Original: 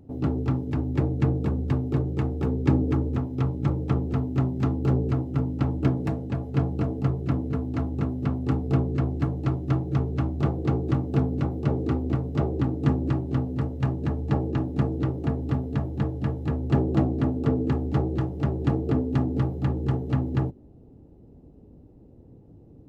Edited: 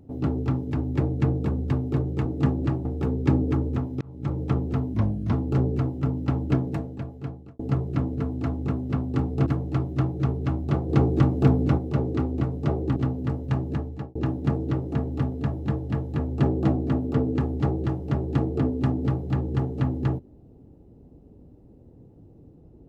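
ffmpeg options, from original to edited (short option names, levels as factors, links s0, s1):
-filter_complex "[0:a]asplit=12[s0][s1][s2][s3][s4][s5][s6][s7][s8][s9][s10][s11];[s0]atrim=end=2.252[s12];[s1]atrim=start=12.678:end=13.282[s13];[s2]atrim=start=2.248:end=3.41,asetpts=PTS-STARTPTS,afade=t=out:st=1.158:d=0.004:c=hsin[s14];[s3]atrim=start=3.41:end=4.344,asetpts=PTS-STARTPTS,afade=t=in:d=0.41[s15];[s4]atrim=start=4.34:end=4.65,asetpts=PTS-STARTPTS,asetrate=35721,aresample=44100[s16];[s5]atrim=start=4.646:end=6.92,asetpts=PTS-STARTPTS,afade=t=out:st=1.244:d=1.03[s17];[s6]atrim=start=6.92:end=8.792,asetpts=PTS-STARTPTS,afade=t=in:d=0.004:c=hsin[s18];[s7]atrim=start=9.178:end=10.612[s19];[s8]atrim=start=10.608:end=11.502,asetpts=PTS-STARTPTS,volume=1.68[s20];[s9]atrim=start=11.498:end=12.682[s21];[s10]atrim=start=13.278:end=14.47,asetpts=PTS-STARTPTS,afade=t=out:st=0.742:d=0.45[s22];[s11]atrim=start=14.47,asetpts=PTS-STARTPTS,afade=t=in:d=0.004:c=hsin[s23];[s12][s13]acrossfade=d=0.004:c1=hsin:c2=hsin[s24];[s14][s15]concat=n=2:v=0:a=1[s25];[s24][s25]acrossfade=d=0.004:c1=hsin:c2=hsin[s26];[s26][s16]acrossfade=d=0.004:c1=hsin:c2=hsin[s27];[s17][s18]concat=n=2:v=0:a=1[s28];[s27][s28]acrossfade=d=0.004:c1=hsin:c2=hsin[s29];[s29][s19]acrossfade=d=0.004:c1=hsin:c2=hsin[s30];[s30][s20]acrossfade=d=0.004:c1=hsin:c2=hsin[s31];[s31][s21]acrossfade=d=0.004:c1=hsin:c2=hsin[s32];[s22][s23]concat=n=2:v=0:a=1[s33];[s32][s33]acrossfade=d=0.004:c1=hsin:c2=hsin"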